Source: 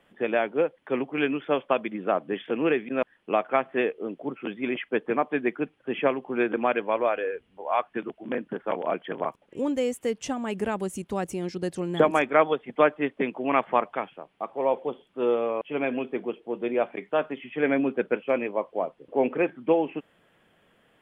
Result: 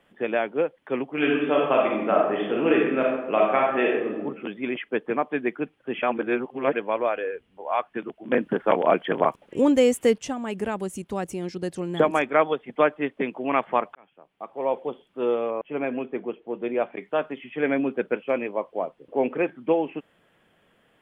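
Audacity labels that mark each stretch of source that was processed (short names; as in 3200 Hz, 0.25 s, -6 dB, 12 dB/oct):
1.100000	4.180000	reverb throw, RT60 0.95 s, DRR -2.5 dB
6.020000	6.730000	reverse
8.320000	10.180000	gain +8 dB
13.950000	14.760000	fade in
15.500000	16.980000	LPF 1900 Hz -> 4100 Hz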